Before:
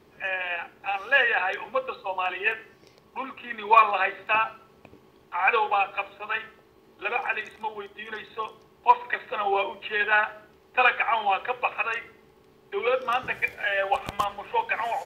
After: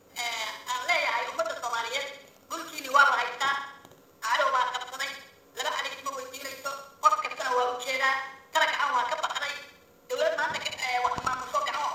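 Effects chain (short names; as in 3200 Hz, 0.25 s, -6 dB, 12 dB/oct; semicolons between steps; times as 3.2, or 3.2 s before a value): sample sorter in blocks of 8 samples; treble ducked by the level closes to 2000 Hz, closed at -22 dBFS; varispeed +26%; flutter echo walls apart 11.1 m, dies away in 0.62 s; gain -1.5 dB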